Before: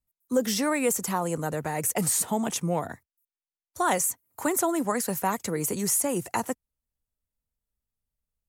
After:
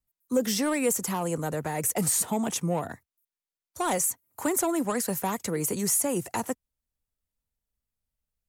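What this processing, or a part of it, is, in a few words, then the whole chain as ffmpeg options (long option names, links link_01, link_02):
one-band saturation: -filter_complex "[0:a]acrossover=split=580|4900[link_01][link_02][link_03];[link_02]asoftclip=type=tanh:threshold=-27dB[link_04];[link_01][link_04][link_03]amix=inputs=3:normalize=0"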